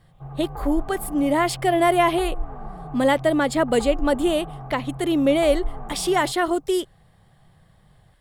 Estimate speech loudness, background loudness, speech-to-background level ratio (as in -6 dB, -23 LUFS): -22.0 LUFS, -36.5 LUFS, 14.5 dB